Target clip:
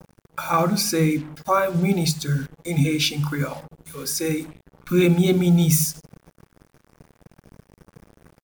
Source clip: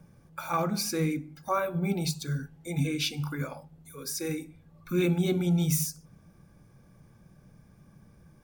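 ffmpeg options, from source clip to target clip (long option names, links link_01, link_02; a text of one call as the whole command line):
ffmpeg -i in.wav -af "acrusher=bits=7:mix=0:aa=0.5,volume=8.5dB" out.wav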